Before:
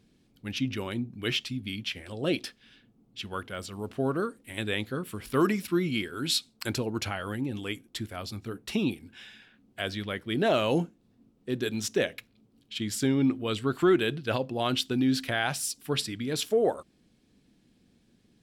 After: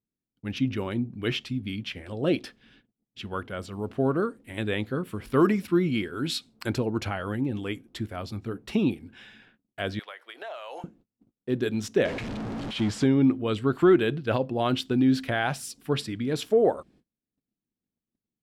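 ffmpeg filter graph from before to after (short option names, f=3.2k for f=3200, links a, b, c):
-filter_complex "[0:a]asettb=1/sr,asplit=3[a][b][c];[a]atrim=end=9.994[d];[b]atrim=start=9.99:end=10.84,asetpts=PTS-STARTPTS,afade=t=in:d=0.004:c=qsin,afade=t=out:st=0.846:d=0.004:c=qsin,highpass=f=660:w=0.5412,highpass=f=660:w=1.3066,acompressor=threshold=-36dB:ratio=16:attack=3.2:release=140:knee=1:detection=peak[e];[c]atrim=start=10.836[f];[d][e]acrossfade=d=0.004:c1=hsin:c2=qsin[g];[g][f]acrossfade=d=0.004:c1=qsin:c2=hsin,asettb=1/sr,asplit=3[h][i][j];[h]atrim=end=12.054[k];[i]atrim=start=12.05:end=13.04,asetpts=PTS-STARTPTS,afade=t=in:d=0.004:c=qsin,afade=t=out:st=0.986:d=0.004:c=qsin,aeval=exprs='val(0)+0.5*0.0299*sgn(val(0))':c=same,lowpass=6.5k[l];[j]atrim=start=13.036[m];[k][l]acrossfade=d=0.004:c1=hsin:c2=qsin[n];[n][m]acrossfade=d=0.004:c1=qsin:c2=hsin,agate=range=-31dB:threshold=-58dB:ratio=16:detection=peak,highshelf=f=2.6k:g=-11.5,volume=4dB"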